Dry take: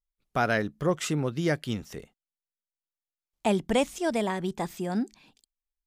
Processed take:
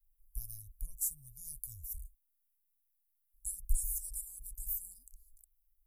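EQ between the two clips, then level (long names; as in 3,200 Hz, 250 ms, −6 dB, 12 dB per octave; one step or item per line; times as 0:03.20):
inverse Chebyshev band-stop filter 190–3,200 Hz, stop band 70 dB
+17.0 dB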